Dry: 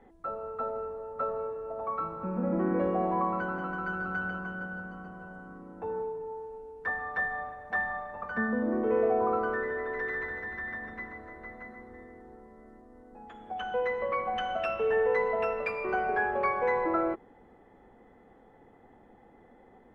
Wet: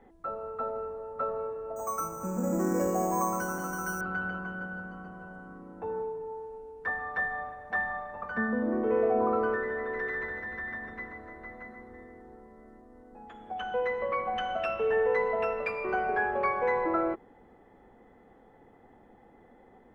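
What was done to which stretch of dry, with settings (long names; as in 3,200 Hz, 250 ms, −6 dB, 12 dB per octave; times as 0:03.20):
0:01.76–0:04.01: bad sample-rate conversion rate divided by 6×, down filtered, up hold
0:08.62–0:09.03: delay throw 520 ms, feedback 45%, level −9.5 dB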